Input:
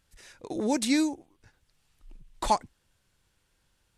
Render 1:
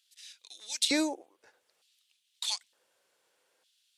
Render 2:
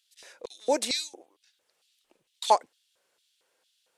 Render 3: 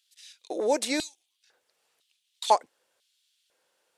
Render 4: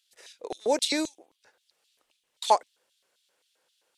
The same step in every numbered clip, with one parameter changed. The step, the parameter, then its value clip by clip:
LFO high-pass, rate: 0.55 Hz, 2.2 Hz, 1 Hz, 3.8 Hz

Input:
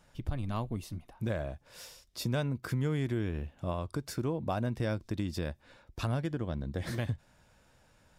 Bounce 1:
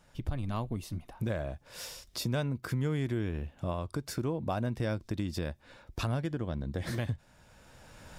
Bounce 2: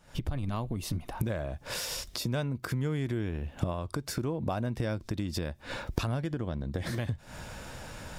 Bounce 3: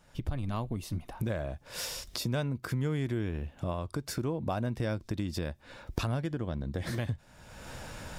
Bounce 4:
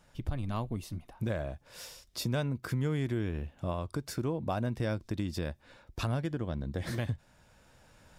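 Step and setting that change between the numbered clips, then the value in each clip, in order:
recorder AGC, rising by: 14 dB/s, 89 dB/s, 35 dB/s, 5.6 dB/s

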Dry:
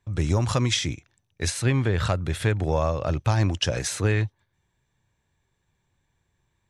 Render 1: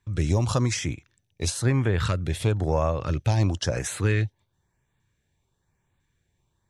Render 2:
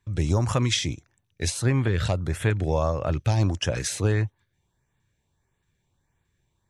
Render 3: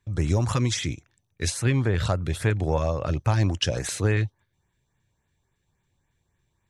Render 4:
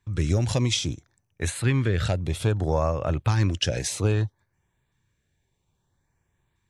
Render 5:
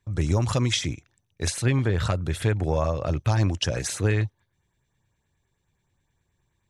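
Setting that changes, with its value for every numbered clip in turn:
LFO notch, rate: 1 Hz, 1.6 Hz, 3.6 Hz, 0.61 Hz, 9.5 Hz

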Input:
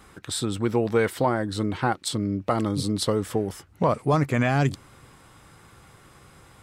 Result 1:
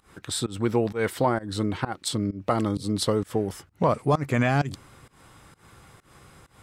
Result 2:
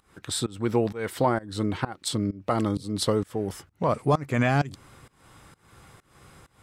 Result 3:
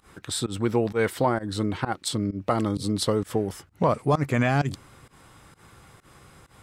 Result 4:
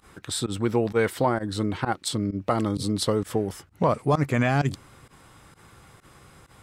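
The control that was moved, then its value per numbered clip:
volume shaper, release: 179 ms, 332 ms, 113 ms, 73 ms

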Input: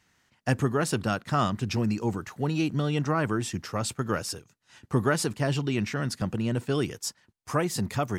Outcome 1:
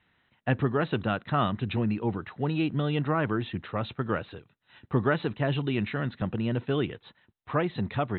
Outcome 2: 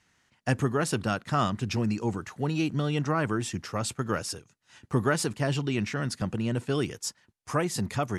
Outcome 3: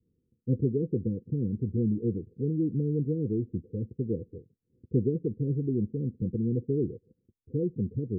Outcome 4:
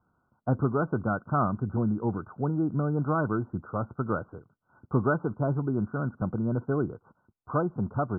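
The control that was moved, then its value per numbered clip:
Chebyshev low-pass, frequency: 4 kHz, 12 kHz, 510 Hz, 1.5 kHz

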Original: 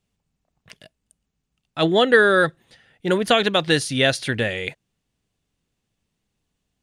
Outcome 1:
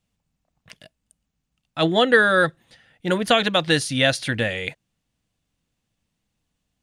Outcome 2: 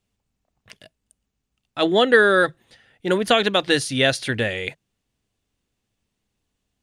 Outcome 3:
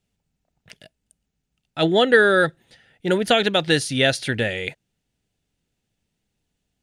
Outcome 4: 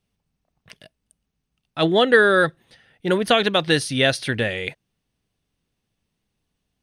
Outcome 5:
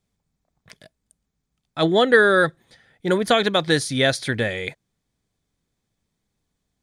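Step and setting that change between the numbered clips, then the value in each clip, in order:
band-stop, frequency: 400 Hz, 160 Hz, 1.1 kHz, 7.2 kHz, 2.8 kHz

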